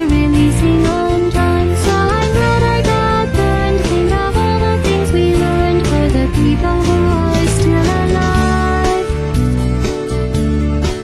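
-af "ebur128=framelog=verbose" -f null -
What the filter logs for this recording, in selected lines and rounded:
Integrated loudness:
  I:         -13.7 LUFS
  Threshold: -23.7 LUFS
Loudness range:
  LRA:         1.3 LU
  Threshold: -33.6 LUFS
  LRA low:   -14.5 LUFS
  LRA high:  -13.2 LUFS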